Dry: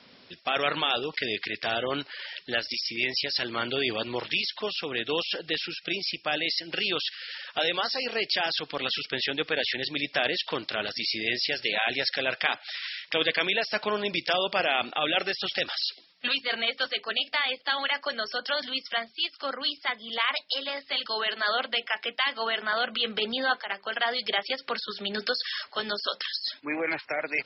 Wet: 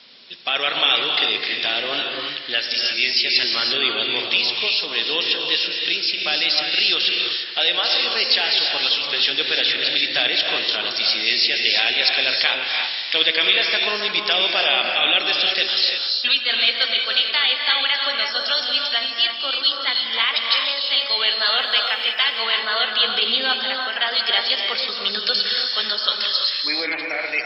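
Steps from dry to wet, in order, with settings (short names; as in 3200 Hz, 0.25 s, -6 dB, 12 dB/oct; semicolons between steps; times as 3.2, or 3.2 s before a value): bell 100 Hz -10 dB 1.7 oct; 21.5–22.09 requantised 10-bit, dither none; bell 3800 Hz +11.5 dB 1.4 oct; on a send: analogue delay 87 ms, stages 1024, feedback 77%, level -13 dB; on the sum: non-linear reverb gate 0.37 s rising, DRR 1.5 dB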